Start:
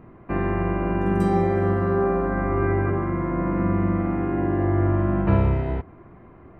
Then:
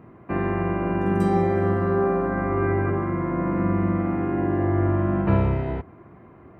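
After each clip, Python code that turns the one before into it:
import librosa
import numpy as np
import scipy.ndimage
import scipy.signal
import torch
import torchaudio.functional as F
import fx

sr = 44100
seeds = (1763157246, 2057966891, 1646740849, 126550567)

y = scipy.signal.sosfilt(scipy.signal.butter(2, 75.0, 'highpass', fs=sr, output='sos'), x)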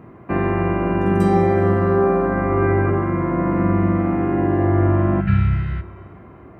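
y = fx.spec_repair(x, sr, seeds[0], start_s=5.23, length_s=0.75, low_hz=210.0, high_hz=1300.0, source='after')
y = fx.rev_schroeder(y, sr, rt60_s=2.3, comb_ms=32, drr_db=16.0)
y = y * librosa.db_to_amplitude(5.0)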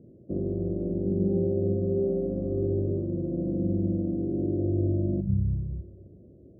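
y = scipy.signal.sosfilt(scipy.signal.ellip(4, 1.0, 40, 570.0, 'lowpass', fs=sr, output='sos'), x)
y = y * librosa.db_to_amplitude(-8.5)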